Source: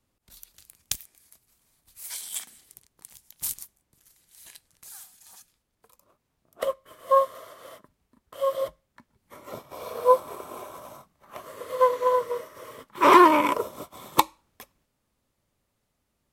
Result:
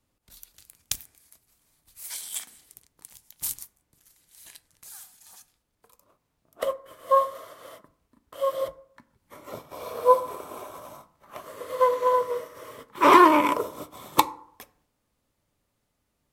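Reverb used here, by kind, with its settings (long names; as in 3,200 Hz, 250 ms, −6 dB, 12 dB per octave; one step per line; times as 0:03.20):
feedback delay network reverb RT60 0.63 s, low-frequency decay 0.9×, high-frequency decay 0.3×, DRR 13 dB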